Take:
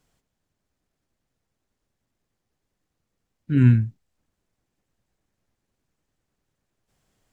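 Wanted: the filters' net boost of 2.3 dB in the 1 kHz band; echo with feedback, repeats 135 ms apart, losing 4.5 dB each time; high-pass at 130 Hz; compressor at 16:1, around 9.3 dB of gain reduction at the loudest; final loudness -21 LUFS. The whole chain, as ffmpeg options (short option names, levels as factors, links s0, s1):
-af "highpass=130,equalizer=f=1000:t=o:g=3.5,acompressor=threshold=0.0891:ratio=16,aecho=1:1:135|270|405|540|675|810|945|1080|1215:0.596|0.357|0.214|0.129|0.0772|0.0463|0.0278|0.0167|0.01,volume=2.51"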